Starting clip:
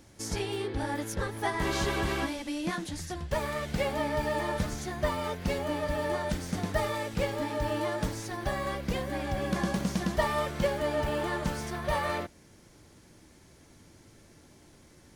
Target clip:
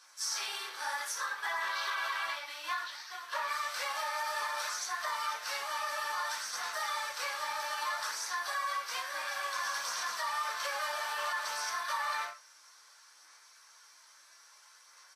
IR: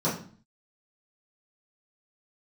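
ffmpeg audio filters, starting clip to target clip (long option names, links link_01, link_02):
-filter_complex "[0:a]asettb=1/sr,asplit=3[link_01][link_02][link_03];[link_01]atrim=end=1.264[link_04];[link_02]atrim=start=1.26:end=3.5,asetpts=PTS-STARTPTS,afade=type=in:duration=0.004:curve=qsin,afade=type=out:start_time=2.236:duration=0.004:curve=qsin,lowpass=frequency=4200:width=0.5412,lowpass=frequency=4200:width=1.3066[link_05];[link_03]atrim=start=3.496[link_06];[link_04][link_05]acrossfade=duration=0.004:curve1=hsin:curve2=qsin[link_07];[link_07][link_06]acrossfade=duration=0.004:curve1=qsin:curve2=hsin,acrusher=bits=5:mode=log:mix=0:aa=0.000001,highpass=frequency=1200:width=0.5412,highpass=frequency=1200:width=1.3066[link_08];[1:a]atrim=start_sample=2205,atrim=end_sample=6174[link_09];[link_08][link_09]afir=irnorm=-1:irlink=0,aphaser=in_gain=1:out_gain=1:delay=3.3:decay=0.25:speed=0.6:type=sinusoidal,alimiter=limit=-23dB:level=0:latency=1:release=51,aeval=exprs='0.0708*(cos(1*acos(clip(val(0)/0.0708,-1,1)))-cos(1*PI/2))+0.001*(cos(2*acos(clip(val(0)/0.0708,-1,1)))-cos(2*PI/2))+0.000562*(cos(4*acos(clip(val(0)/0.0708,-1,1)))-cos(4*PI/2))+0.00141*(cos(7*acos(clip(val(0)/0.0708,-1,1)))-cos(7*PI/2))':channel_layout=same,asplit=2[link_10][link_11];[link_11]adelay=100,highpass=300,lowpass=3400,asoftclip=type=hard:threshold=-32dB,volume=-30dB[link_12];[link_10][link_12]amix=inputs=2:normalize=0,volume=-2.5dB" -ar 44100 -c:a libvorbis -b:a 32k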